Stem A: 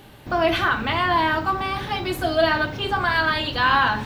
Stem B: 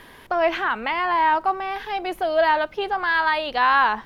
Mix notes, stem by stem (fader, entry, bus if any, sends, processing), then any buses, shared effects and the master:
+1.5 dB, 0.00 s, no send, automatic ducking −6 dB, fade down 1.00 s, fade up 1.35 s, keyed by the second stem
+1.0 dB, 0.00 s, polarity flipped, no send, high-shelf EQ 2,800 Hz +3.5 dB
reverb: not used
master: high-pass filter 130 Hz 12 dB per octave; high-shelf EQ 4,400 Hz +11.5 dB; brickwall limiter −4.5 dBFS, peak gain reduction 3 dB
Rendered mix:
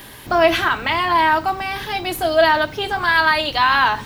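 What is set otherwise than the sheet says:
stem B: polarity flipped
master: missing high-pass filter 130 Hz 12 dB per octave

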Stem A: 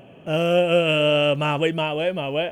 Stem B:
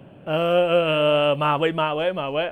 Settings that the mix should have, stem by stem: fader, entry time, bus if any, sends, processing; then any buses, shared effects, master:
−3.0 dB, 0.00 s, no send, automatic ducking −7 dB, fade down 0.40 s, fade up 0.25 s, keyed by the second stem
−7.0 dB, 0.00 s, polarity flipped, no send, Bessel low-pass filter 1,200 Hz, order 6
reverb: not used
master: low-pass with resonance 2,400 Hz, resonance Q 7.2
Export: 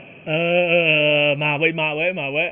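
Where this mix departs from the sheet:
stem A −3.0 dB → +3.0 dB
stem B: polarity flipped

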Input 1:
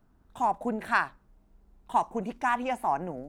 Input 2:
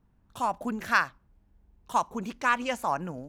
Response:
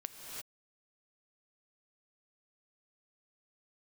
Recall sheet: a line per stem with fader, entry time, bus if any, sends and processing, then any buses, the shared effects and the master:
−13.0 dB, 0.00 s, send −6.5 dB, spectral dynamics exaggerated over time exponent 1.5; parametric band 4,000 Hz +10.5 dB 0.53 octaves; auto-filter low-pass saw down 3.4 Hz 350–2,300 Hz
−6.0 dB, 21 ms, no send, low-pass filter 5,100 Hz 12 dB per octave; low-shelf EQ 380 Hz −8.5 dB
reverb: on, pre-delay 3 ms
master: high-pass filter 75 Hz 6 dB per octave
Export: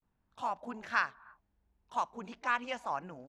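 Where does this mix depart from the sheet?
stem 1 −13.0 dB → −23.5 dB
master: missing high-pass filter 75 Hz 6 dB per octave

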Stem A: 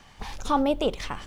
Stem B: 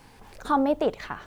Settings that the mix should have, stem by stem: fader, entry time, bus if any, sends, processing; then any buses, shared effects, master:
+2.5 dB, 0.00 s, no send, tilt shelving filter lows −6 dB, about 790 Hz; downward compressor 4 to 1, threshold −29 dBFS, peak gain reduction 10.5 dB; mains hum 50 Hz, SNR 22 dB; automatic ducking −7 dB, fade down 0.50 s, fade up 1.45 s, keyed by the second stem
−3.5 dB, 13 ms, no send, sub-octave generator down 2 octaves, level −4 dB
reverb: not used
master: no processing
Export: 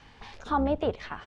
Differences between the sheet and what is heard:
stem A +2.5 dB → −5.5 dB
master: extra low-pass filter 4,100 Hz 12 dB per octave

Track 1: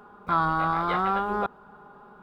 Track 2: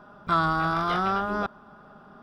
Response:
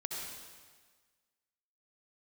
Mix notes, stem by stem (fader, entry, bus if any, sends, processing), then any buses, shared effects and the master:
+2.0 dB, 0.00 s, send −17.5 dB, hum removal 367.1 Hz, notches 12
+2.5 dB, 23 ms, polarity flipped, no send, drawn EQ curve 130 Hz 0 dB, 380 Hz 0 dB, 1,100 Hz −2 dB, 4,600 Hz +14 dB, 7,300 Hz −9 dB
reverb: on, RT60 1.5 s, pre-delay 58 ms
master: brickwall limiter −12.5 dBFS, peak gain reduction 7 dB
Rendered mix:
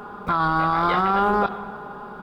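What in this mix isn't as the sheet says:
stem 1 +2.0 dB → +12.0 dB
stem 2 +2.5 dB → −6.5 dB

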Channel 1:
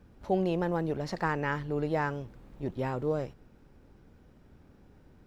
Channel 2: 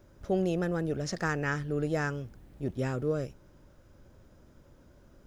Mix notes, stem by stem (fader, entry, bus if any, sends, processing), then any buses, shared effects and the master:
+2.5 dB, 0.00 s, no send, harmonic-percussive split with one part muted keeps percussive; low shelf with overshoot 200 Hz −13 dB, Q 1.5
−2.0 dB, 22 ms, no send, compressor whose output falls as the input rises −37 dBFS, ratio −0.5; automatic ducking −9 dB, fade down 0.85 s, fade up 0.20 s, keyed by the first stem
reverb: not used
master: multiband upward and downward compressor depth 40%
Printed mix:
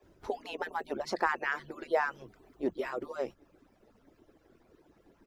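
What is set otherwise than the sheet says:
stem 2 −2.0 dB → −13.5 dB
master: missing multiband upward and downward compressor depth 40%

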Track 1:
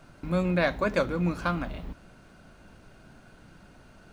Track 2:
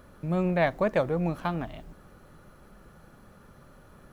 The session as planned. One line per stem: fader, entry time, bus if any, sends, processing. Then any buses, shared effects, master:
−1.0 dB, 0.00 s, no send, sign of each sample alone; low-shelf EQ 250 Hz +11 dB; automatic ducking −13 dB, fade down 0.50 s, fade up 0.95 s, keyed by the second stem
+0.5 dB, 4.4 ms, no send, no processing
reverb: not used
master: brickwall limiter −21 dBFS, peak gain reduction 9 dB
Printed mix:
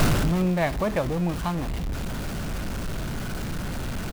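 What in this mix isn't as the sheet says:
stem 1 −1.0 dB → +8.0 dB
master: missing brickwall limiter −21 dBFS, peak gain reduction 9 dB

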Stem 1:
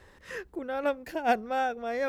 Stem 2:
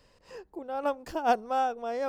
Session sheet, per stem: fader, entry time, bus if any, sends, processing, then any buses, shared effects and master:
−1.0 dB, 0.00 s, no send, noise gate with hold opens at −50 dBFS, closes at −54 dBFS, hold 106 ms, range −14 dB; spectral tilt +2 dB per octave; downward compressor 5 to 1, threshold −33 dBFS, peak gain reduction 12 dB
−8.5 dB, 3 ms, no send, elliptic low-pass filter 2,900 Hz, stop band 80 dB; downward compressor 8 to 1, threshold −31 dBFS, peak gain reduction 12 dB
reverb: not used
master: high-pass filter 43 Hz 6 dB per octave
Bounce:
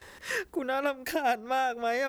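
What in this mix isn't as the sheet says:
stem 1 −1.0 dB → +7.5 dB
master: missing high-pass filter 43 Hz 6 dB per octave

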